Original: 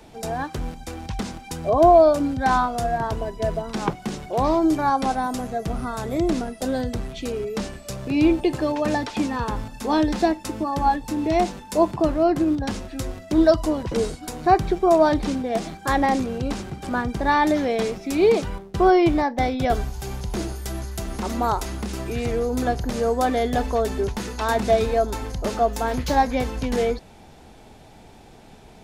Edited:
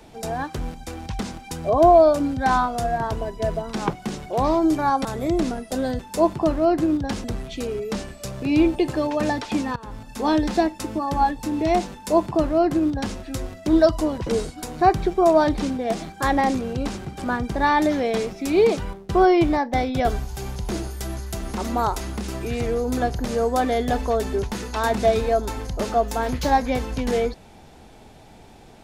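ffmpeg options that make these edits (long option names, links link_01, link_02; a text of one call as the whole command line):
ffmpeg -i in.wav -filter_complex "[0:a]asplit=5[link_01][link_02][link_03][link_04][link_05];[link_01]atrim=end=5.052[link_06];[link_02]atrim=start=5.948:end=6.892[link_07];[link_03]atrim=start=11.568:end=12.822[link_08];[link_04]atrim=start=6.888:end=9.41,asetpts=PTS-STARTPTS,afade=type=out:start_time=2.518:duration=0.004:curve=hsin:silence=0.1[link_09];[link_05]atrim=start=9.41,asetpts=PTS-STARTPTS,afade=type=in:duration=0.46:silence=0.1[link_10];[link_06][link_07]acrossfade=duration=0.004:curve1=hsin:curve2=hsin[link_11];[link_11][link_08]acrossfade=duration=0.004:curve1=hsin:curve2=hsin[link_12];[link_09][link_10]concat=n=2:v=0:a=1[link_13];[link_12][link_13]acrossfade=duration=0.004:curve1=hsin:curve2=hsin" out.wav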